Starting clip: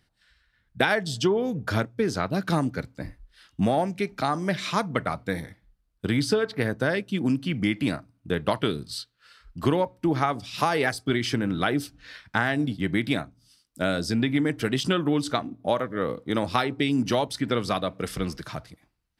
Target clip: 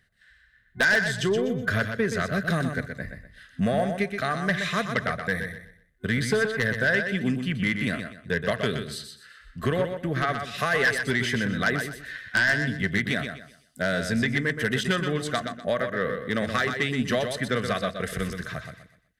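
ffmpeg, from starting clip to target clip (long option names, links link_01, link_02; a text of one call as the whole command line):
ffmpeg -i in.wav -filter_complex "[0:a]superequalizer=6b=0.355:9b=0.282:11b=2.82:14b=0.562,aeval=exprs='0.794*(cos(1*acos(clip(val(0)/0.794,-1,1)))-cos(1*PI/2))+0.355*(cos(3*acos(clip(val(0)/0.794,-1,1)))-cos(3*PI/2))+0.112*(cos(4*acos(clip(val(0)/0.794,-1,1)))-cos(4*PI/2))+0.178*(cos(5*acos(clip(val(0)/0.794,-1,1)))-cos(5*PI/2))+0.0631*(cos(6*acos(clip(val(0)/0.794,-1,1)))-cos(6*PI/2))':channel_layout=same,asplit=2[link_01][link_02];[link_02]aecho=0:1:124|248|372|496:0.447|0.13|0.0376|0.0109[link_03];[link_01][link_03]amix=inputs=2:normalize=0,asoftclip=type=hard:threshold=-17dB,volume=2dB" out.wav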